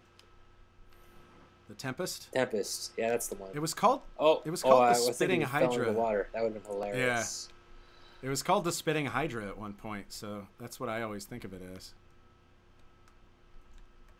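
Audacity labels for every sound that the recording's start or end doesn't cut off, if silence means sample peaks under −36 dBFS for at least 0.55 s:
1.700000	7.450000	sound
8.230000	11.850000	sound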